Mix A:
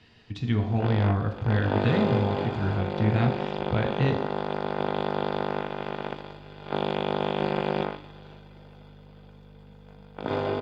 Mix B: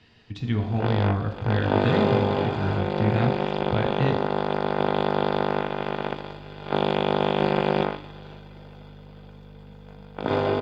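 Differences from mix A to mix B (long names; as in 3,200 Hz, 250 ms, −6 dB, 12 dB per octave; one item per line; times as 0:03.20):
background +4.5 dB
master: add parametric band 9,900 Hz −3 dB 0.36 octaves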